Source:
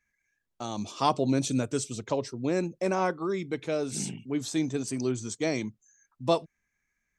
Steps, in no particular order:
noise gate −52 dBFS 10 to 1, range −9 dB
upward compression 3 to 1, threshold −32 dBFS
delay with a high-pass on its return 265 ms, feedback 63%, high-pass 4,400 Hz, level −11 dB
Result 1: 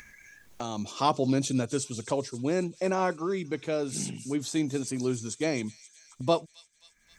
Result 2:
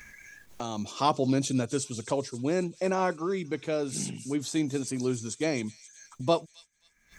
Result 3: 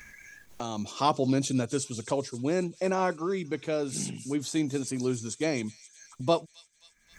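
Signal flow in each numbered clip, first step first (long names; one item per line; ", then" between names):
noise gate, then upward compression, then delay with a high-pass on its return
upward compression, then delay with a high-pass on its return, then noise gate
upward compression, then noise gate, then delay with a high-pass on its return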